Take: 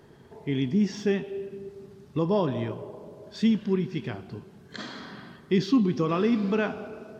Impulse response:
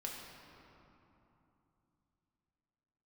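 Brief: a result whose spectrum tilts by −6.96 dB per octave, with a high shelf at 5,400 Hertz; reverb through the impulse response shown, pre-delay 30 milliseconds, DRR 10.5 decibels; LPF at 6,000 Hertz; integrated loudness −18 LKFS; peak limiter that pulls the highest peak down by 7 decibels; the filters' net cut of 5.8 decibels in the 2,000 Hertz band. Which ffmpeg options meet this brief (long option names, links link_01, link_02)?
-filter_complex "[0:a]lowpass=6000,equalizer=frequency=2000:width_type=o:gain=-8.5,highshelf=frequency=5400:gain=3.5,alimiter=limit=-19.5dB:level=0:latency=1,asplit=2[link_01][link_02];[1:a]atrim=start_sample=2205,adelay=30[link_03];[link_02][link_03]afir=irnorm=-1:irlink=0,volume=-10dB[link_04];[link_01][link_04]amix=inputs=2:normalize=0,volume=12dB"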